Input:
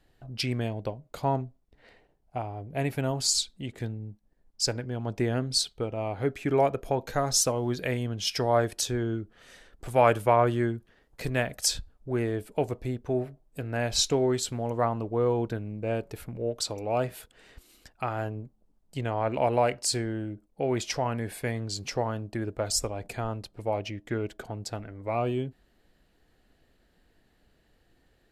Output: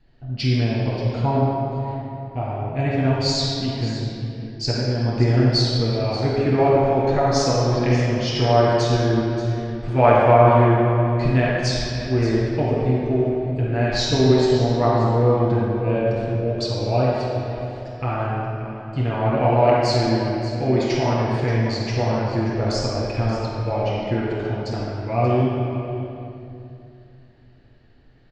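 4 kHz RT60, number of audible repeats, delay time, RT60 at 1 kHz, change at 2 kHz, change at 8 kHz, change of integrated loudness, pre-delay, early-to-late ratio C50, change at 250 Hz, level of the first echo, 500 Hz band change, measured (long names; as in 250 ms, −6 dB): 2.1 s, 1, 582 ms, 2.6 s, +7.5 dB, −5.0 dB, +8.5 dB, 7 ms, −4.0 dB, +10.5 dB, −13.0 dB, +9.0 dB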